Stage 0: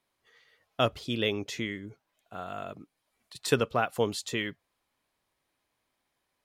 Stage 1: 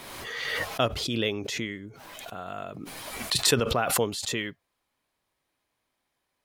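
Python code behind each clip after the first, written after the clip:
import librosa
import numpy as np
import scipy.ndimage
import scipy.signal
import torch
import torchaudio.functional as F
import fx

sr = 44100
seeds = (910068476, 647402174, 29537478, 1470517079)

y = fx.pre_swell(x, sr, db_per_s=28.0)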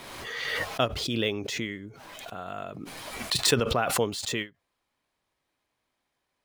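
y = scipy.signal.medfilt(x, 3)
y = fx.end_taper(y, sr, db_per_s=300.0)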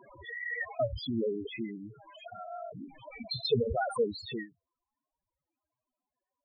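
y = fx.spec_topn(x, sr, count=4)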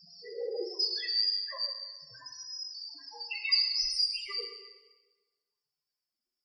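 y = fx.band_shuffle(x, sr, order='2341')
y = fx.rev_plate(y, sr, seeds[0], rt60_s=1.3, hf_ratio=0.9, predelay_ms=0, drr_db=2.0)
y = y * librosa.db_to_amplitude(-1.5)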